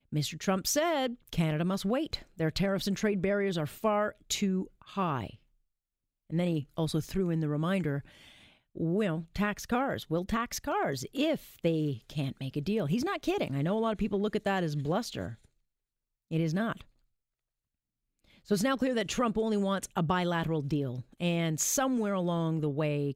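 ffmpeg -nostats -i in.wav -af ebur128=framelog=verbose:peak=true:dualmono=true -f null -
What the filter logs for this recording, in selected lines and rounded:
Integrated loudness:
  I:         -28.2 LUFS
  Threshold: -38.4 LUFS
Loudness range:
  LRA:         3.9 LU
  Threshold: -49.2 LUFS
  LRA low:   -31.2 LUFS
  LRA high:  -27.3 LUFS
True peak:
  Peak:      -14.4 dBFS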